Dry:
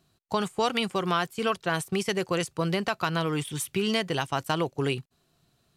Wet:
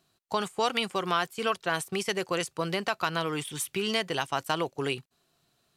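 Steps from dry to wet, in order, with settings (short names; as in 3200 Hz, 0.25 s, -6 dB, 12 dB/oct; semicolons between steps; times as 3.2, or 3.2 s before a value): low shelf 230 Hz -10.5 dB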